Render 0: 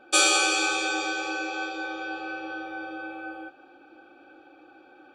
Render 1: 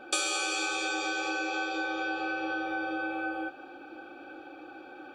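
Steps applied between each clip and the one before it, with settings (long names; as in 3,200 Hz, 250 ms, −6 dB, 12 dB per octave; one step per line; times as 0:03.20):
downward compressor 6 to 1, threshold −35 dBFS, peak gain reduction 17 dB
level +6 dB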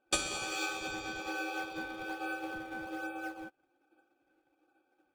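in parallel at −10 dB: sample-and-hold swept by an LFO 20×, swing 160% 1.2 Hz
on the sum: expander for the loud parts 2.5 to 1, over −46 dBFS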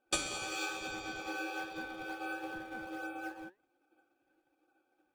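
flanger 1.1 Hz, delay 3.6 ms, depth 6.9 ms, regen +83%
level +2.5 dB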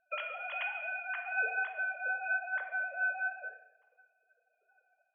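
three sine waves on the formant tracks
dense smooth reverb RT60 0.95 s, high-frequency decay 1×, DRR 5 dB
level +2 dB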